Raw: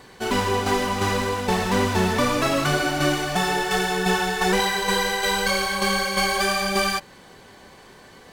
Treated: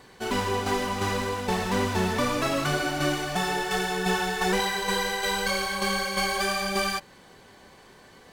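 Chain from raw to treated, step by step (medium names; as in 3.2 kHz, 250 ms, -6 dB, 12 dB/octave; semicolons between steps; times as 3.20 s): 4.04–4.58 s: companding laws mixed up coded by mu; trim -4.5 dB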